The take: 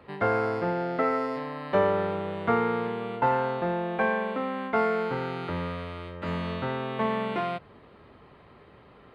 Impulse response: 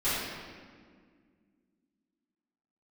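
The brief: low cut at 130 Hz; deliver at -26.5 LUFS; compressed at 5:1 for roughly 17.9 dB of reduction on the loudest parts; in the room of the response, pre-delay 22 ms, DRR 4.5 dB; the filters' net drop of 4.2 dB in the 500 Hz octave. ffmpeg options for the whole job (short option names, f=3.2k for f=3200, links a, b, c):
-filter_complex "[0:a]highpass=130,equalizer=f=500:t=o:g=-5,acompressor=threshold=-43dB:ratio=5,asplit=2[a][b];[1:a]atrim=start_sample=2205,adelay=22[c];[b][c]afir=irnorm=-1:irlink=0,volume=-15.5dB[d];[a][d]amix=inputs=2:normalize=0,volume=17.5dB"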